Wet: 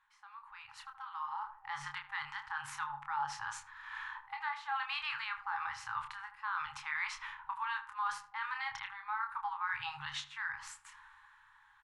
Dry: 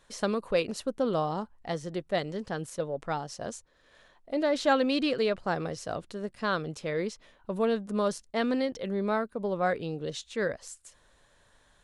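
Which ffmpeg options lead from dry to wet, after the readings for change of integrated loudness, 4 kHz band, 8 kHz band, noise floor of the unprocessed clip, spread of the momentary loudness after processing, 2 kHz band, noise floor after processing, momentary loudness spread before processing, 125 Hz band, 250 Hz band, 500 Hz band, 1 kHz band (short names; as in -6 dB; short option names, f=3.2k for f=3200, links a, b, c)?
-8.5 dB, -6.5 dB, -8.0 dB, -64 dBFS, 13 LU, -1.0 dB, -64 dBFS, 10 LU, -22.0 dB, under -35 dB, under -40 dB, -3.0 dB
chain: -filter_complex "[0:a]acrossover=split=600 2300:gain=0.0708 1 0.126[a][b][c];[a][b][c]amix=inputs=3:normalize=0,afftfilt=real='re*(1-between(b*sr/4096,150,790))':imag='im*(1-between(b*sr/4096,150,790))':win_size=4096:overlap=0.75,highshelf=f=4.2k:g=-6.5,areverse,acompressor=threshold=-52dB:ratio=8,areverse,alimiter=level_in=24dB:limit=-24dB:level=0:latency=1:release=135,volume=-24dB,dynaudnorm=f=160:g=17:m=16dB,asplit=2[d][e];[e]adelay=27,volume=-6dB[f];[d][f]amix=inputs=2:normalize=0,asplit=2[g][h];[h]adelay=77,lowpass=f=1k:p=1,volume=-8dB,asplit=2[i][j];[j]adelay=77,lowpass=f=1k:p=1,volume=0.47,asplit=2[k][l];[l]adelay=77,lowpass=f=1k:p=1,volume=0.47,asplit=2[m][n];[n]adelay=77,lowpass=f=1k:p=1,volume=0.47,asplit=2[o][p];[p]adelay=77,lowpass=f=1k:p=1,volume=0.47[q];[g][i][k][m][o][q]amix=inputs=6:normalize=0,volume=4dB"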